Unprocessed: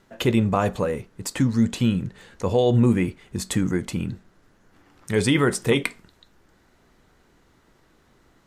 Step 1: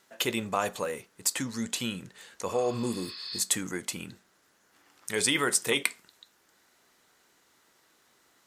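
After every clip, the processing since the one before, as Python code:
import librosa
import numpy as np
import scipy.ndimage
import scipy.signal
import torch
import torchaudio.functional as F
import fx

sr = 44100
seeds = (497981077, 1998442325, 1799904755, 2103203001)

y = fx.highpass(x, sr, hz=700.0, slope=6)
y = fx.spec_repair(y, sr, seeds[0], start_s=2.51, length_s=0.87, low_hz=1000.0, high_hz=5300.0, source='both')
y = fx.high_shelf(y, sr, hz=4300.0, db=10.5)
y = F.gain(torch.from_numpy(y), -3.5).numpy()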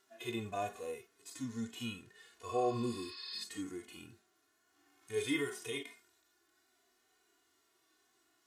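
y = fx.hpss(x, sr, part='percussive', gain_db=-18)
y = y + 0.65 * np.pad(y, (int(2.8 * sr / 1000.0), 0))[:len(y)]
y = fx.hpss(y, sr, part='percussive', gain_db=-16)
y = F.gain(torch.from_numpy(y), -3.0).numpy()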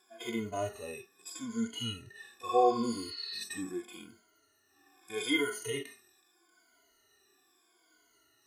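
y = fx.spec_ripple(x, sr, per_octave=1.8, drift_hz=-0.79, depth_db=23)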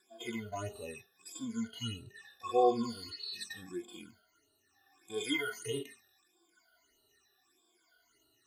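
y = fx.phaser_stages(x, sr, stages=8, low_hz=290.0, high_hz=2000.0, hz=1.6, feedback_pct=20)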